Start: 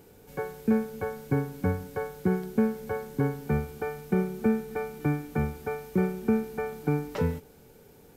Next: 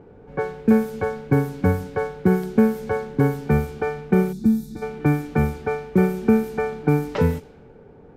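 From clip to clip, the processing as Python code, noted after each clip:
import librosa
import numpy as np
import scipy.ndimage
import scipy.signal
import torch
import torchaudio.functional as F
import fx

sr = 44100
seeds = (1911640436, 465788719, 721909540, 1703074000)

y = fx.env_lowpass(x, sr, base_hz=1200.0, full_db=-24.0)
y = fx.spec_box(y, sr, start_s=4.33, length_s=0.49, low_hz=350.0, high_hz=3400.0, gain_db=-19)
y = F.gain(torch.from_numpy(y), 8.0).numpy()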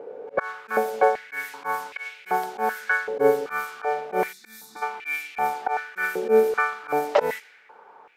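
y = fx.auto_swell(x, sr, attack_ms=106.0)
y = fx.filter_held_highpass(y, sr, hz=2.6, low_hz=510.0, high_hz=2400.0)
y = F.gain(torch.from_numpy(y), 3.5).numpy()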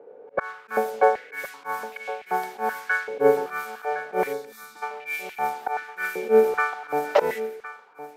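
y = x + 10.0 ** (-10.5 / 20.0) * np.pad(x, (int(1062 * sr / 1000.0), 0))[:len(x)]
y = fx.band_widen(y, sr, depth_pct=40)
y = F.gain(torch.from_numpy(y), -1.5).numpy()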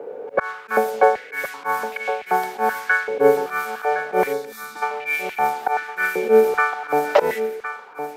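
y = fx.band_squash(x, sr, depth_pct=40)
y = F.gain(torch.from_numpy(y), 5.5).numpy()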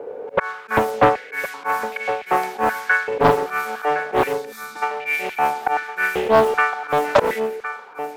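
y = fx.doppler_dist(x, sr, depth_ms=0.78)
y = F.gain(torch.from_numpy(y), 1.0).numpy()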